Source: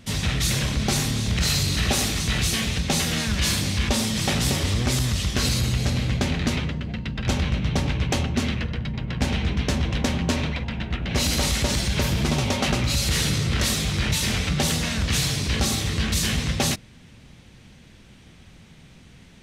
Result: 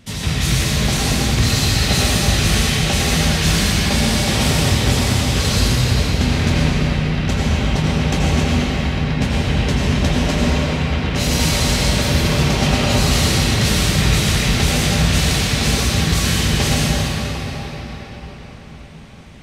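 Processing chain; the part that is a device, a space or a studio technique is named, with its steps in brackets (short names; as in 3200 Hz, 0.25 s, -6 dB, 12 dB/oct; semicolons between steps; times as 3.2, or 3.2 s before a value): cathedral (reverb RT60 5.7 s, pre-delay 76 ms, DRR -6.5 dB)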